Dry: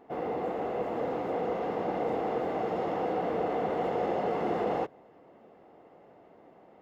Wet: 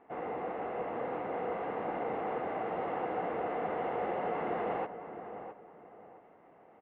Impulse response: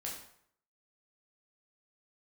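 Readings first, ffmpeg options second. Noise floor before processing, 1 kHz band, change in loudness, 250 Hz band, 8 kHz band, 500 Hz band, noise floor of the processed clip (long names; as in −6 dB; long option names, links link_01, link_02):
−57 dBFS, −2.5 dB, −4.5 dB, −6.5 dB, can't be measured, −5.0 dB, −60 dBFS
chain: -filter_complex "[0:a]lowpass=frequency=2600:width=0.5412,lowpass=frequency=2600:width=1.3066,acrossover=split=810[link_01][link_02];[link_02]acontrast=77[link_03];[link_01][link_03]amix=inputs=2:normalize=0,asplit=2[link_04][link_05];[link_05]adelay=663,lowpass=frequency=1800:poles=1,volume=-9.5dB,asplit=2[link_06][link_07];[link_07]adelay=663,lowpass=frequency=1800:poles=1,volume=0.31,asplit=2[link_08][link_09];[link_09]adelay=663,lowpass=frequency=1800:poles=1,volume=0.31[link_10];[link_04][link_06][link_08][link_10]amix=inputs=4:normalize=0,volume=-7dB"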